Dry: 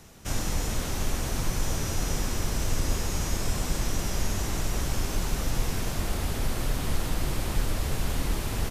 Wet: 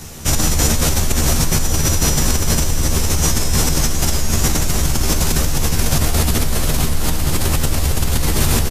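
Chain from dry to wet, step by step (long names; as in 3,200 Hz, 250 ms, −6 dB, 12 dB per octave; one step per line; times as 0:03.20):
double-tracking delay 13 ms −2 dB
in parallel at +3 dB: compressor whose output falls as the input rises −28 dBFS, ratio −0.5
on the sum: bass and treble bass +3 dB, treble +6 dB
level +2 dB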